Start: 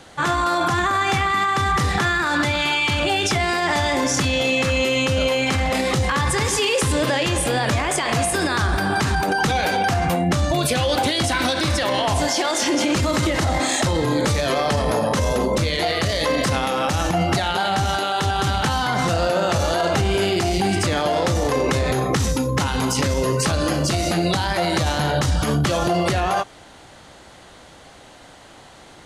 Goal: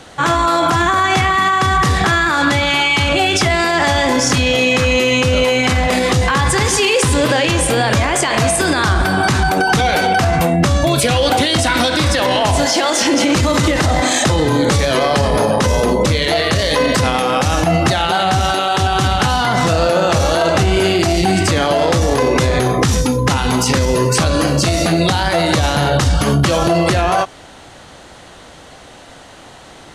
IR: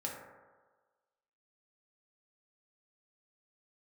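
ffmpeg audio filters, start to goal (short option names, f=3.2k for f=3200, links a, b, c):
-af "asetrate=42777,aresample=44100,volume=6dB"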